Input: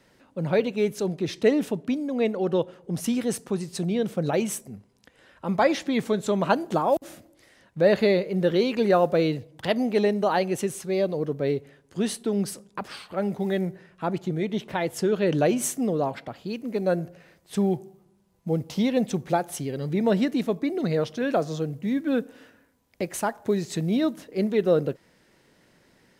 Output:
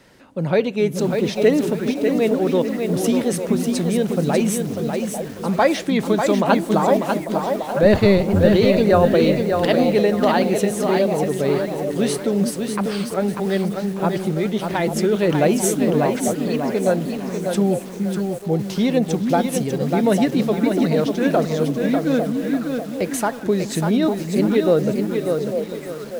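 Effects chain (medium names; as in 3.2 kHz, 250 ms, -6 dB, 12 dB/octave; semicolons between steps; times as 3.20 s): 7.82–8.47 s: octave divider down 1 oct, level +1 dB; in parallel at -2.5 dB: compression 5:1, threshold -37 dBFS, peak gain reduction 21 dB; on the sum: repeats whose band climbs or falls 423 ms, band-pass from 230 Hz, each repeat 1.4 oct, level -3.5 dB; bit-crushed delay 595 ms, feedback 35%, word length 7-bit, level -5 dB; trim +3.5 dB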